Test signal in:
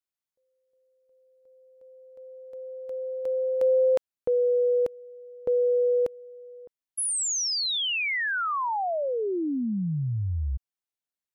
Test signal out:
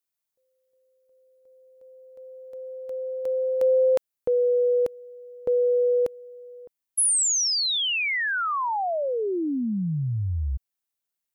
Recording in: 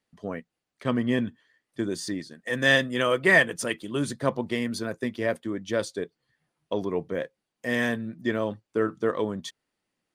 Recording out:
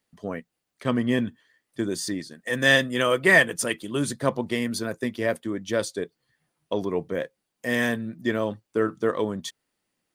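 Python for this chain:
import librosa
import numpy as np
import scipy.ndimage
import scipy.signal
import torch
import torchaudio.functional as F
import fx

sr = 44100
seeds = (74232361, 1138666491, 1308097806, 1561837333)

y = fx.high_shelf(x, sr, hz=8700.0, db=9.0)
y = y * 10.0 ** (1.5 / 20.0)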